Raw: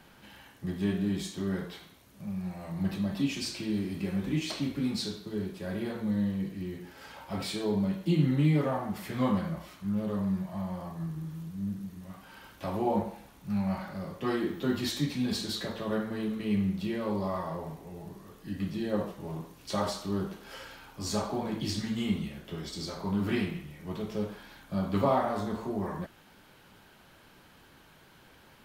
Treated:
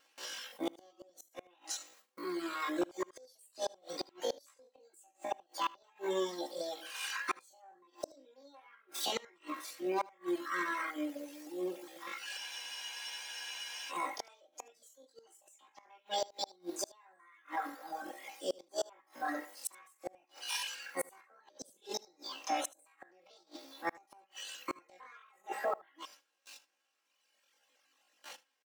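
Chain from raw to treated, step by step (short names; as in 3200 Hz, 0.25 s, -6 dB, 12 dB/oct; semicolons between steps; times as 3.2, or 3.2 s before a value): gate with hold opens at -45 dBFS; HPF 350 Hz 12 dB/oct; reverb removal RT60 1.8 s; comb 6.8 ms, depth 62%; pitch shift +10.5 st; soft clip -18 dBFS, distortion -26 dB; flipped gate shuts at -32 dBFS, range -36 dB; vibrato 1.5 Hz 11 cents; on a send: echo 77 ms -22 dB; on the sum: spectral freeze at 12.4, 1.49 s; gain +9.5 dB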